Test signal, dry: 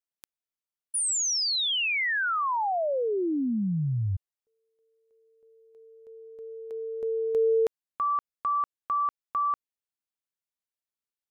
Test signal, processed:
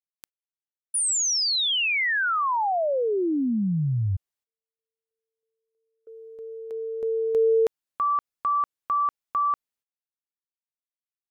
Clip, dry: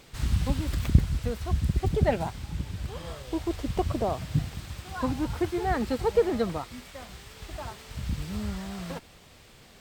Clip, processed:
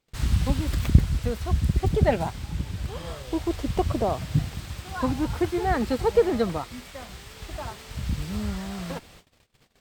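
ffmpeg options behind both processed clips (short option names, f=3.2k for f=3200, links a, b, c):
-af "agate=range=-28dB:threshold=-49dB:ratio=16:release=209:detection=rms,volume=3dB"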